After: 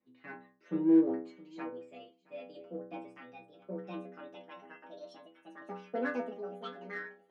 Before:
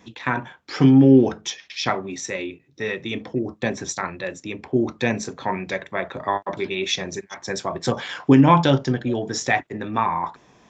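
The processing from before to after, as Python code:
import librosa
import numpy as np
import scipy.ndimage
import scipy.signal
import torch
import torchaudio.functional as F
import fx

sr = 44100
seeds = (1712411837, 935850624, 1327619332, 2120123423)

p1 = fx.speed_glide(x, sr, from_pct=110, to_pct=183)
p2 = scipy.signal.sosfilt(scipy.signal.butter(2, 1600.0, 'lowpass', fs=sr, output='sos'), p1)
p3 = fx.peak_eq(p2, sr, hz=990.0, db=-8.0, octaves=0.45)
p4 = fx.stiff_resonator(p3, sr, f0_hz=60.0, decay_s=0.79, stiffness=0.008)
p5 = 10.0 ** (-31.5 / 20.0) * np.tanh(p4 / 10.0 ** (-31.5 / 20.0))
p6 = p4 + F.gain(torch.from_numpy(p5), -8.0).numpy()
p7 = fx.low_shelf_res(p6, sr, hz=150.0, db=-9.0, q=1.5)
p8 = p7 + fx.echo_single(p7, sr, ms=671, db=-17.0, dry=0)
p9 = fx.band_widen(p8, sr, depth_pct=40)
y = F.gain(torch.from_numpy(p9), -7.5).numpy()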